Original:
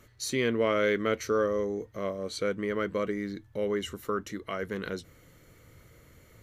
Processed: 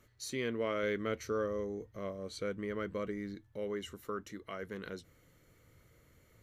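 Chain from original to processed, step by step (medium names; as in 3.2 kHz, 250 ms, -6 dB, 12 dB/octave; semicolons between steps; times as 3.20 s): 0.83–3.35 s: bass shelf 130 Hz +8 dB; trim -8.5 dB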